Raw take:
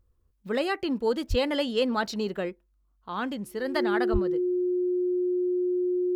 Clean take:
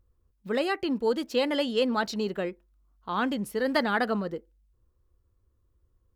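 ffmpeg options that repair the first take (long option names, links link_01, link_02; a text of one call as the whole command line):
ffmpeg -i in.wav -filter_complex "[0:a]bandreject=frequency=360:width=30,asplit=3[link_01][link_02][link_03];[link_01]afade=type=out:start_time=1.29:duration=0.02[link_04];[link_02]highpass=frequency=140:width=0.5412,highpass=frequency=140:width=1.3066,afade=type=in:start_time=1.29:duration=0.02,afade=type=out:start_time=1.41:duration=0.02[link_05];[link_03]afade=type=in:start_time=1.41:duration=0.02[link_06];[link_04][link_05][link_06]amix=inputs=3:normalize=0,asplit=3[link_07][link_08][link_09];[link_07]afade=type=out:start_time=4.12:duration=0.02[link_10];[link_08]highpass=frequency=140:width=0.5412,highpass=frequency=140:width=1.3066,afade=type=in:start_time=4.12:duration=0.02,afade=type=out:start_time=4.24:duration=0.02[link_11];[link_09]afade=type=in:start_time=4.24:duration=0.02[link_12];[link_10][link_11][link_12]amix=inputs=3:normalize=0,asetnsamples=nb_out_samples=441:pad=0,asendcmd='2.52 volume volume 3.5dB',volume=0dB" out.wav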